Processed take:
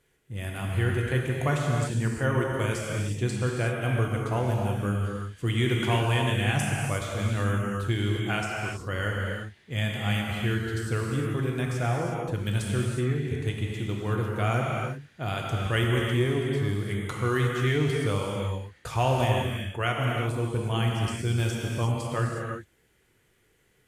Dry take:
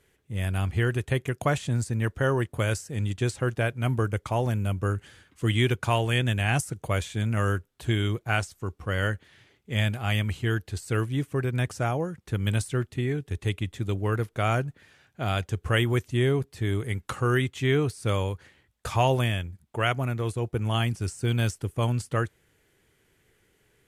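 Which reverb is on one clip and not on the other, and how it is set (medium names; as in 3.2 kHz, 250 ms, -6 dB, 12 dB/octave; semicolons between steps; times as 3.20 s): gated-style reverb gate 390 ms flat, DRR -1.5 dB; trim -4 dB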